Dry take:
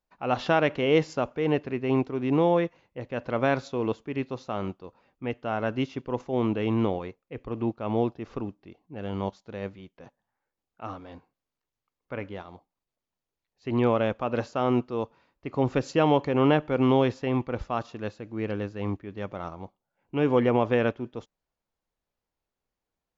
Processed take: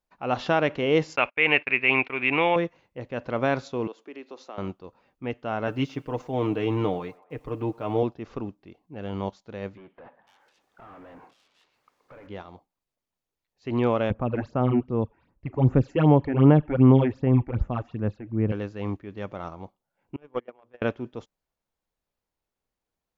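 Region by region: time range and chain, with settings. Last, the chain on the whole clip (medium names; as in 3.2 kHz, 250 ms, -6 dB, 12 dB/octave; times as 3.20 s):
1.16–2.56 s: resonant low-pass 2.4 kHz, resonance Q 7 + gate -39 dBFS, range -32 dB + tilt shelf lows -9 dB, about 630 Hz
3.87–4.58 s: compression 3:1, threshold -36 dBFS + high-pass 290 Hz 24 dB/octave
5.67–8.03 s: word length cut 12-bit, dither none + comb 6.6 ms, depth 61% + band-passed feedback delay 110 ms, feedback 65%, band-pass 970 Hz, level -21 dB
9.77–12.27 s: compression, threshold -51 dBFS + overdrive pedal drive 31 dB, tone 1.9 kHz, clips at -39 dBFS + bands offset in time lows, highs 500 ms, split 2.9 kHz
14.10–18.52 s: tone controls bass +11 dB, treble -13 dB + phase shifter stages 8, 2.6 Hz, lowest notch 140–4600 Hz
20.16–20.82 s: hum notches 60/120/180/240/300/360/420/480/540 Hz + gate -19 dBFS, range -38 dB + peaking EQ 1.1 kHz +4.5 dB 2.4 oct
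whole clip: none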